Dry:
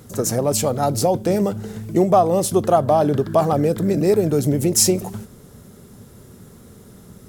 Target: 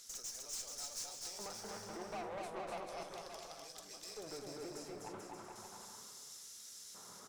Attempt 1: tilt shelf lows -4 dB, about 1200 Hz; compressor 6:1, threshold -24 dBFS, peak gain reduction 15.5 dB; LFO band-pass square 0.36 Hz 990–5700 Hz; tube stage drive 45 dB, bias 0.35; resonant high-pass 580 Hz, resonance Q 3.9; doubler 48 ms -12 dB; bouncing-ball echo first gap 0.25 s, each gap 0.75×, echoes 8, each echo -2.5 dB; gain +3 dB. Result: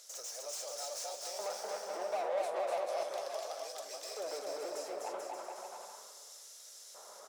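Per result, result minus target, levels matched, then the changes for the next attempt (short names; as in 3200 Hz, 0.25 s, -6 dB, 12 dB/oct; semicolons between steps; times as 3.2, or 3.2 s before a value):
compressor: peak gain reduction -6.5 dB; 500 Hz band +4.5 dB
change: compressor 6:1, threshold -31.5 dBFS, peak gain reduction 21.5 dB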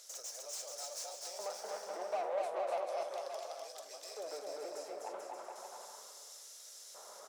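500 Hz band +4.5 dB
remove: resonant high-pass 580 Hz, resonance Q 3.9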